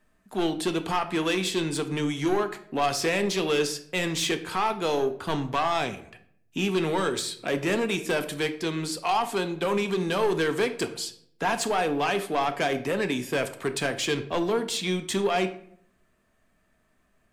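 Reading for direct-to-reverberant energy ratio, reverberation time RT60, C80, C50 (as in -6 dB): 8.0 dB, 0.65 s, 16.5 dB, 13.0 dB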